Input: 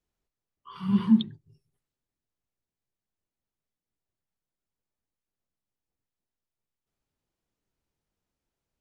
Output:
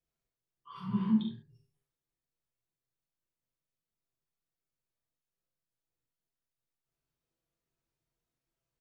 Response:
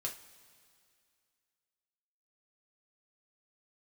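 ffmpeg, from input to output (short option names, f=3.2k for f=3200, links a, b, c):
-filter_complex "[0:a]asettb=1/sr,asplit=3[a][b][c];[a]atrim=end=0.804[d];[b]atrim=start=0.8:end=1.29,asetpts=PTS-STARTPTS,afade=t=in:d=0.004:c=qsin,afade=t=out:st=0.486:d=0.004:c=qsin,lowpass=f=1.6k:p=1[e];[c]atrim=start=1.286[f];[d][e]acrossfade=d=0.004:c1=hsin:c2=qsin[g];[g][f]acrossfade=d=0.004:c1=qsin:c2=hsin,aecho=1:1:42|70:0.531|0.422[h];[1:a]atrim=start_sample=2205,atrim=end_sample=6174[i];[h][i]afir=irnorm=-1:irlink=0,volume=-5dB"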